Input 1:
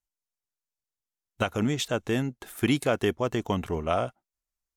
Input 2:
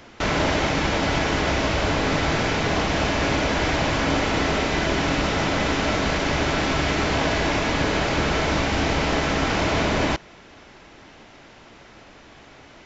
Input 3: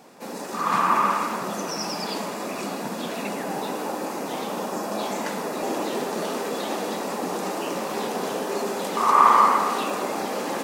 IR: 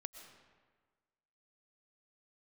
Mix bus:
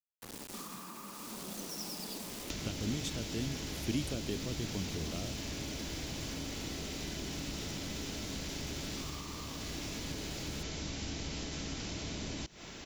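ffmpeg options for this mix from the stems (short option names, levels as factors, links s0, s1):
-filter_complex "[0:a]adelay=1250,volume=0.376[s0];[1:a]aemphasis=mode=production:type=50fm,acompressor=threshold=0.0355:ratio=2.5,adelay=2300,volume=1.19[s1];[2:a]acrusher=bits=4:mix=0:aa=0.000001,volume=0.299[s2];[s1][s2]amix=inputs=2:normalize=0,acompressor=threshold=0.02:ratio=6,volume=1[s3];[s0][s3]amix=inputs=2:normalize=0,acrossover=split=370|3000[s4][s5][s6];[s5]acompressor=threshold=0.00224:ratio=4[s7];[s4][s7][s6]amix=inputs=3:normalize=0"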